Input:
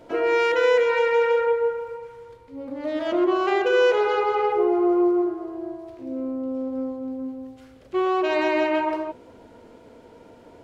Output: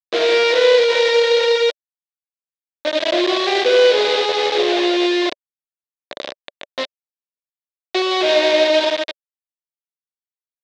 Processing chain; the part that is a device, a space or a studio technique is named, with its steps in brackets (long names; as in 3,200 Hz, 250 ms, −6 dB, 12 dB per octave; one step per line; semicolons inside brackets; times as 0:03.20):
hand-held game console (bit reduction 4 bits; loudspeaker in its box 400–5,000 Hz, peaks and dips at 580 Hz +8 dB, 890 Hz −6 dB, 1,300 Hz −9 dB, 3,700 Hz +8 dB)
level +5 dB